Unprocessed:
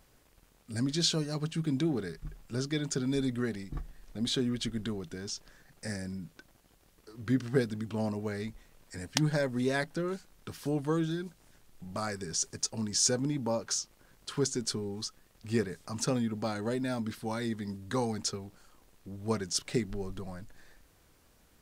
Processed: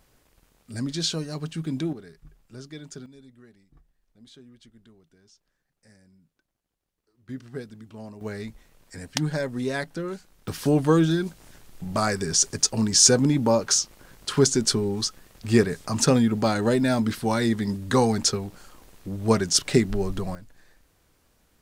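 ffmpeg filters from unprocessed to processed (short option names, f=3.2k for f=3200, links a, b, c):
-af "asetnsamples=n=441:p=0,asendcmd='1.93 volume volume -8dB;3.06 volume volume -19.5dB;7.29 volume volume -8dB;8.21 volume volume 2dB;10.48 volume volume 11dB;20.35 volume volume -0.5dB',volume=1.5dB"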